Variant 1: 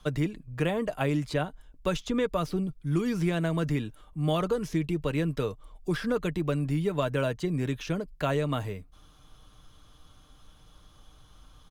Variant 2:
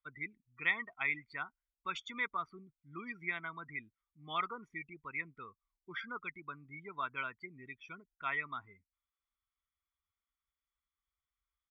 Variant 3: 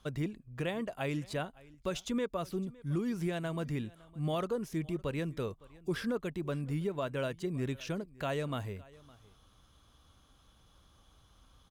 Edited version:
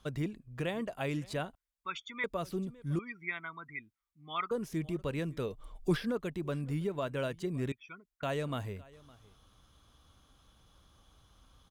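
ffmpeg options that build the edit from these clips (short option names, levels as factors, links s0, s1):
-filter_complex "[1:a]asplit=3[s0][s1][s2];[2:a]asplit=5[s3][s4][s5][s6][s7];[s3]atrim=end=1.552[s8];[s0]atrim=start=1.548:end=2.242[s9];[s4]atrim=start=2.238:end=2.992[s10];[s1]atrim=start=2.988:end=4.512[s11];[s5]atrim=start=4.508:end=5.6[s12];[0:a]atrim=start=5.44:end=6.08[s13];[s6]atrim=start=5.92:end=7.722[s14];[s2]atrim=start=7.718:end=8.232[s15];[s7]atrim=start=8.228[s16];[s8][s9]acrossfade=d=0.004:c1=hsin:c2=hsin[s17];[s17][s10]acrossfade=d=0.004:c1=hsin:c2=hsin[s18];[s18][s11]acrossfade=d=0.004:c1=hsin:c2=hsin[s19];[s19][s12]acrossfade=d=0.004:c1=hsin:c2=hsin[s20];[s20][s13]acrossfade=d=0.16:c1=tri:c2=tri[s21];[s21][s14]acrossfade=d=0.16:c1=tri:c2=tri[s22];[s22][s15]acrossfade=d=0.004:c1=hsin:c2=hsin[s23];[s23][s16]acrossfade=d=0.004:c1=hsin:c2=hsin"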